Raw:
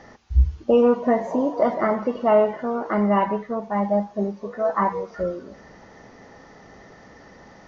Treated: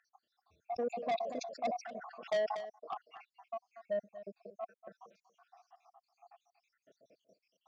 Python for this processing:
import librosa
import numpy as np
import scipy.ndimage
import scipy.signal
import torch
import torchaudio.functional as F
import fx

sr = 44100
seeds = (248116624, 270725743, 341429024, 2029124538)

y = fx.spec_dropout(x, sr, seeds[0], share_pct=79)
y = fx.vowel_filter(y, sr, vowel='a')
y = 10.0 ** (-26.5 / 20.0) * np.tanh(y / 10.0 ** (-26.5 / 20.0))
y = scipy.signal.sosfilt(scipy.signal.butter(2, 130.0, 'highpass', fs=sr, output='sos'), y)
y = fx.bass_treble(y, sr, bass_db=7, treble_db=14)
y = y + 10.0 ** (-15.5 / 20.0) * np.pad(y, (int(237 * sr / 1000.0), 0))[:len(y)]
y = fx.dynamic_eq(y, sr, hz=1200.0, q=0.77, threshold_db=-48.0, ratio=4.0, max_db=-4)
y = fx.sustainer(y, sr, db_per_s=57.0, at=(0.64, 2.7))